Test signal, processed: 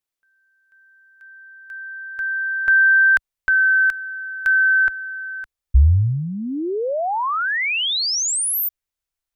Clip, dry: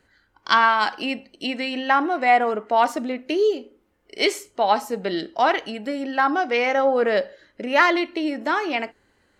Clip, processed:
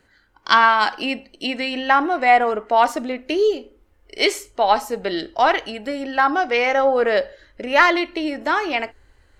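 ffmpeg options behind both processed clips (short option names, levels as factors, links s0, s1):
-af "asubboost=boost=12:cutoff=54,volume=1.41"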